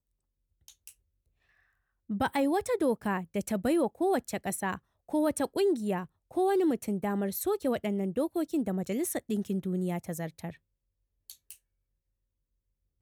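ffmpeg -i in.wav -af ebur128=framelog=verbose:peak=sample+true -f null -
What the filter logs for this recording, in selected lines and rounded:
Integrated loudness:
  I:         -30.6 LUFS
  Threshold: -41.6 LUFS
Loudness range:
  LRA:         7.0 LU
  Threshold: -51.5 LUFS
  LRA low:   -37.0 LUFS
  LRA high:  -30.0 LUFS
Sample peak:
  Peak:      -18.0 dBFS
True peak:
  Peak:      -18.0 dBFS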